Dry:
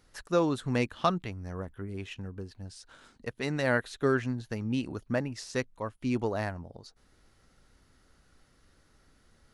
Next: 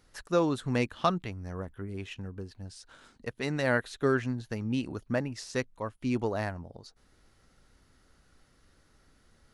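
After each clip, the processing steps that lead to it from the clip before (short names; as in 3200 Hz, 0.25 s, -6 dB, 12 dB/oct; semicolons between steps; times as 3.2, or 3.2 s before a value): nothing audible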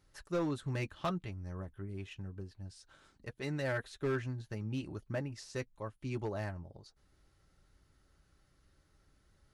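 low shelf 160 Hz +5 dB; notch comb 240 Hz; overloaded stage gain 21.5 dB; gain -6.5 dB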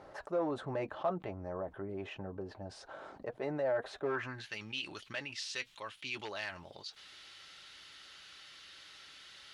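band-pass sweep 670 Hz -> 3200 Hz, 4.05–4.55; fast leveller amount 50%; gain +5.5 dB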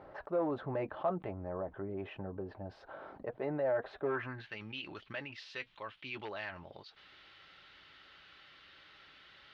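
air absorption 330 m; gain +1.5 dB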